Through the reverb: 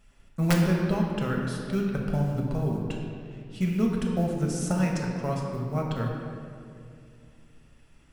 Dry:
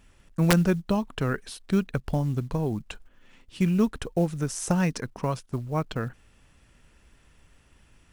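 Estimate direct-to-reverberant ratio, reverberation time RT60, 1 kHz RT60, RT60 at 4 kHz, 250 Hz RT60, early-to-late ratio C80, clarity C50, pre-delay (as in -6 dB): -1.0 dB, 2.4 s, 2.2 s, 1.4 s, 3.3 s, 3.0 dB, 1.5 dB, 5 ms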